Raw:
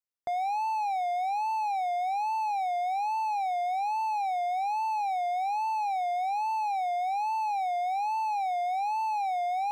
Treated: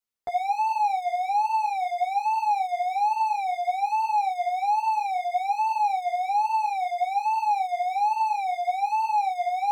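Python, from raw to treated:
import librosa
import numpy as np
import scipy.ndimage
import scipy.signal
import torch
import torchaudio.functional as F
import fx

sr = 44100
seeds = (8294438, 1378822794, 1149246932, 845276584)

y = fx.ensemble(x, sr)
y = y * 10.0 ** (7.0 / 20.0)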